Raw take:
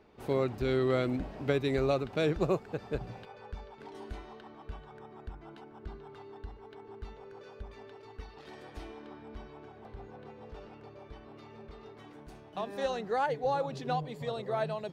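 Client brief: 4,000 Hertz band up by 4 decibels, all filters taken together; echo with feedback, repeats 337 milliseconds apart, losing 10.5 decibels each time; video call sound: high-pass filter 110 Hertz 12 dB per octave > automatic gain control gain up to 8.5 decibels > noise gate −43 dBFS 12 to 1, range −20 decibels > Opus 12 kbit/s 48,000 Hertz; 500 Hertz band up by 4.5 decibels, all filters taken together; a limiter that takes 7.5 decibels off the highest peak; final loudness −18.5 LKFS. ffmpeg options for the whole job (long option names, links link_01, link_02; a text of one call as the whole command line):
ffmpeg -i in.wav -af "equalizer=frequency=500:width_type=o:gain=5.5,equalizer=frequency=4000:width_type=o:gain=4.5,alimiter=limit=-19.5dB:level=0:latency=1,highpass=110,aecho=1:1:337|674|1011:0.299|0.0896|0.0269,dynaudnorm=maxgain=8.5dB,agate=range=-20dB:threshold=-43dB:ratio=12,volume=13.5dB" -ar 48000 -c:a libopus -b:a 12k out.opus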